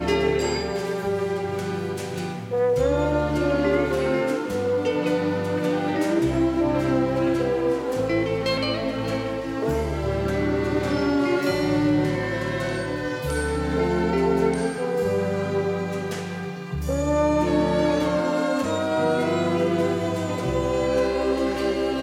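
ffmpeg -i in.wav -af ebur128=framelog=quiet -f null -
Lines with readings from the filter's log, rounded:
Integrated loudness:
  I:         -23.7 LUFS
  Threshold: -33.6 LUFS
Loudness range:
  LRA:         1.9 LU
  Threshold: -43.6 LUFS
  LRA low:   -24.6 LUFS
  LRA high:  -22.8 LUFS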